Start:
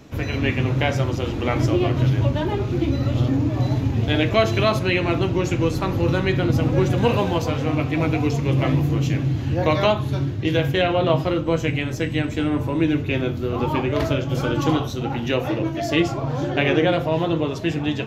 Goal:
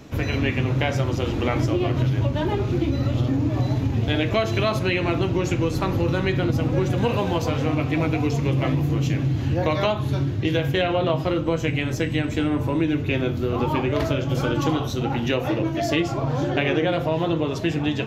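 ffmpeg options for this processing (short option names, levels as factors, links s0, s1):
-af "acompressor=threshold=0.0891:ratio=3,volume=1.26"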